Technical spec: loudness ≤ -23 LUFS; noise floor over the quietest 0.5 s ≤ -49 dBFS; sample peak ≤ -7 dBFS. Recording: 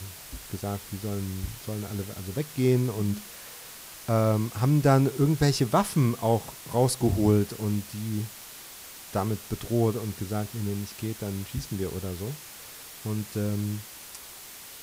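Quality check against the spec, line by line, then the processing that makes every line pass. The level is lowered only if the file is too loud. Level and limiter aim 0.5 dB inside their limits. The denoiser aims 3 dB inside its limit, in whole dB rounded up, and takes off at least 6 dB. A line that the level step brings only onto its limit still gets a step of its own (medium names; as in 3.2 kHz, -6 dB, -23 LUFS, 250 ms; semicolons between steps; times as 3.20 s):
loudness -28.0 LUFS: pass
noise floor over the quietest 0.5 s -44 dBFS: fail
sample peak -10.0 dBFS: pass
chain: noise reduction 8 dB, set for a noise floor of -44 dBFS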